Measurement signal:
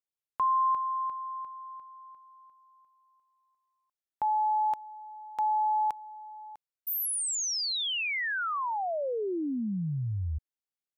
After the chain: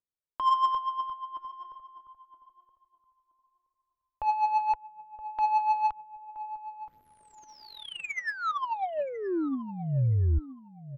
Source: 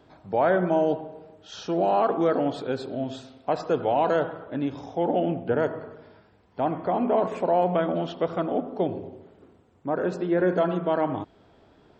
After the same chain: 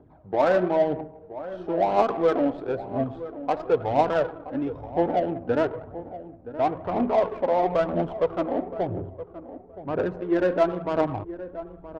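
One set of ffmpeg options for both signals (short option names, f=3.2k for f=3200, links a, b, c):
-filter_complex "[0:a]asubboost=boost=6:cutoff=72,aphaser=in_gain=1:out_gain=1:delay=4:decay=0.5:speed=1:type=triangular,adynamicsmooth=sensitivity=1.5:basefreq=870,asplit=2[a][b];[b]adelay=972,lowpass=f=1k:p=1,volume=-13dB,asplit=2[c][d];[d]adelay=972,lowpass=f=1k:p=1,volume=0.22,asplit=2[e][f];[f]adelay=972,lowpass=f=1k:p=1,volume=0.22[g];[c][e][g]amix=inputs=3:normalize=0[h];[a][h]amix=inputs=2:normalize=0"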